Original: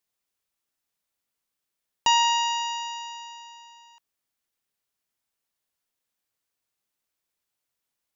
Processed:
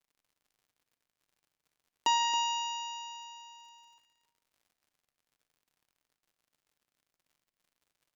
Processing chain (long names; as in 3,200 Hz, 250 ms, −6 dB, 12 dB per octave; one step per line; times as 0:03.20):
downward expander −50 dBFS
high-pass filter 190 Hz 24 dB per octave
parametric band 330 Hz +11.5 dB 1.3 octaves
surface crackle 88 per second −51 dBFS
single-tap delay 274 ms −12 dB
rectangular room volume 820 cubic metres, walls mixed, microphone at 0.46 metres
level −8 dB